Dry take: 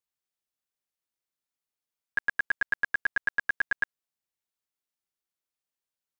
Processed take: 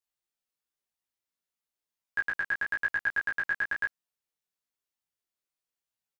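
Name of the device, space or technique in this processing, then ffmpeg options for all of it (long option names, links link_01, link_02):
double-tracked vocal: -filter_complex "[0:a]asplit=2[link_01][link_02];[link_02]adelay=17,volume=-2dB[link_03];[link_01][link_03]amix=inputs=2:normalize=0,flanger=delay=18:depth=4.4:speed=1"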